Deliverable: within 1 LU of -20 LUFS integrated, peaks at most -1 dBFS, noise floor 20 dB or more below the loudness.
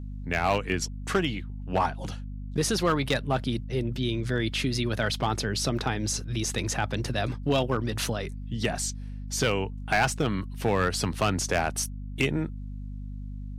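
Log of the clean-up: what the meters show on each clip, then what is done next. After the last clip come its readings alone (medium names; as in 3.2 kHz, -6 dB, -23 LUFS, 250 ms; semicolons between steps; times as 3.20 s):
clipped samples 0.5%; clipping level -16.5 dBFS; hum 50 Hz; highest harmonic 250 Hz; hum level -34 dBFS; loudness -28.0 LUFS; peak level -16.5 dBFS; loudness target -20.0 LUFS
-> clip repair -16.5 dBFS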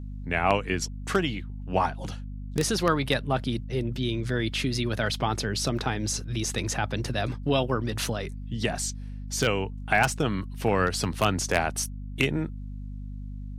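clipped samples 0.0%; hum 50 Hz; highest harmonic 250 Hz; hum level -34 dBFS
-> hum notches 50/100/150/200/250 Hz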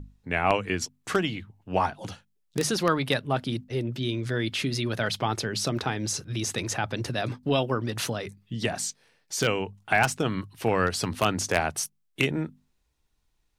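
hum not found; loudness -28.0 LUFS; peak level -7.5 dBFS; loudness target -20.0 LUFS
-> trim +8 dB; peak limiter -1 dBFS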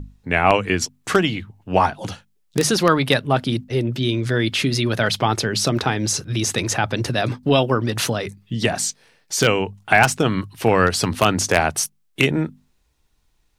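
loudness -20.0 LUFS; peak level -1.0 dBFS; noise floor -64 dBFS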